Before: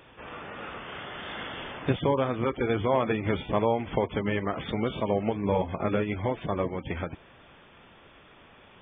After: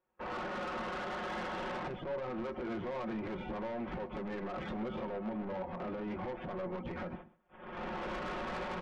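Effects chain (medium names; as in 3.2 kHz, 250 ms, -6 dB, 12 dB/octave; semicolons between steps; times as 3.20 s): recorder AGC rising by 21 dB/s; low-pass 1.3 kHz 12 dB/octave; gate -42 dBFS, range -32 dB; bass shelf 440 Hz -5.5 dB; comb 5.5 ms, depth 80%; compression, threshold -29 dBFS, peak gain reduction 9.5 dB; peak limiter -27 dBFS, peak gain reduction 9.5 dB; saturation -38 dBFS, distortion -9 dB; echo from a far wall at 22 m, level -18 dB; on a send at -16 dB: reverberation RT60 0.45 s, pre-delay 3 ms; on the sum: trim +2 dB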